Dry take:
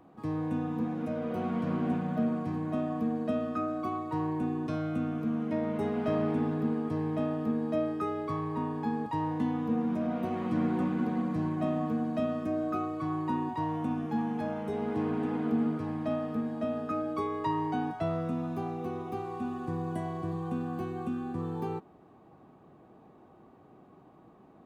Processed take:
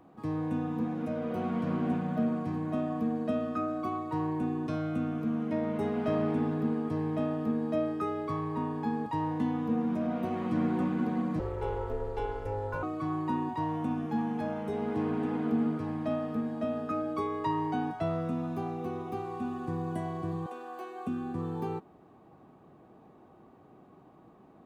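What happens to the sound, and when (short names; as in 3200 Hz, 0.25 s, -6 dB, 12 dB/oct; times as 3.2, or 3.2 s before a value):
11.39–12.83 ring modulator 210 Hz
20.46–21.07 HPF 440 Hz 24 dB/oct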